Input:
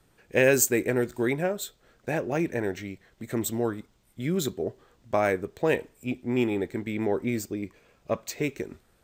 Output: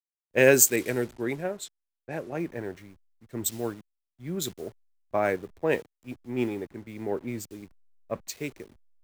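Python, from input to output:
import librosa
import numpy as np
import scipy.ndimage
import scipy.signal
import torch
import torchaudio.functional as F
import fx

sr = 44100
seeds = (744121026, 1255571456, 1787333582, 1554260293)

y = fx.delta_hold(x, sr, step_db=-40.5)
y = fx.env_lowpass(y, sr, base_hz=1400.0, full_db=-25.5, at=(0.76, 2.39))
y = fx.band_widen(y, sr, depth_pct=100)
y = y * librosa.db_to_amplitude(-4.5)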